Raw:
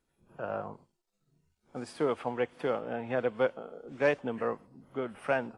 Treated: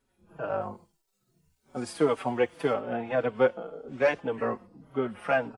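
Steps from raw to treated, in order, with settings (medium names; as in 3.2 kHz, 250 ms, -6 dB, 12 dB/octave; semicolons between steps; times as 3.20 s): treble shelf 7.2 kHz -2 dB, from 0.61 s +9 dB, from 2.73 s -5.5 dB; endless flanger 4.8 ms -1.8 Hz; trim +7 dB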